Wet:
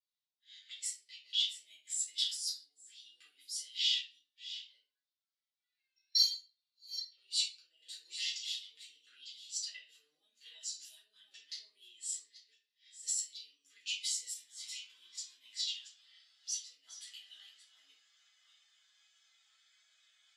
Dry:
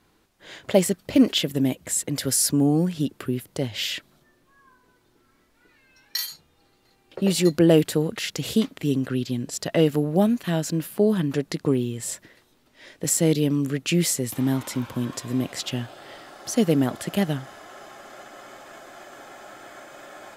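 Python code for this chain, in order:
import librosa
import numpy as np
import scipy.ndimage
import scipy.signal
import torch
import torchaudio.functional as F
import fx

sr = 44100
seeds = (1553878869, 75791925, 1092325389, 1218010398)

y = fx.reverse_delay(x, sr, ms=597, wet_db=-9.0)
y = fx.over_compress(y, sr, threshold_db=-25.0, ratio=-1.0)
y = fx.ladder_bandpass(y, sr, hz=5100.0, resonance_pct=25)
y = fx.room_shoebox(y, sr, seeds[0], volume_m3=83.0, walls='mixed', distance_m=2.0)
y = fx.spectral_expand(y, sr, expansion=1.5)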